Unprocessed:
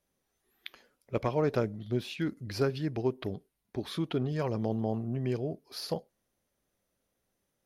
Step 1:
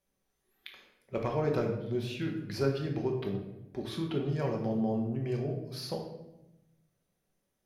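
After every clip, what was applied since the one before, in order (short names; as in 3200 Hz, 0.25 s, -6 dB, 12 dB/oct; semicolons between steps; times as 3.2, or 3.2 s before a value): shoebox room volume 340 m³, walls mixed, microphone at 1.1 m; gain -4 dB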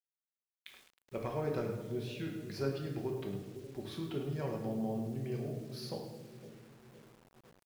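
split-band echo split 550 Hz, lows 0.51 s, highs 0.105 s, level -12 dB; bit-crush 9-bit; gain -6 dB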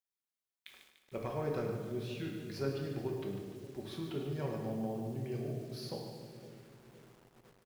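feedback echo 0.147 s, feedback 54%, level -9.5 dB; gain -1 dB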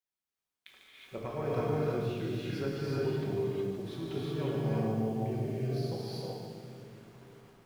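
high shelf 5300 Hz -5.5 dB; non-linear reverb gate 0.4 s rising, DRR -3.5 dB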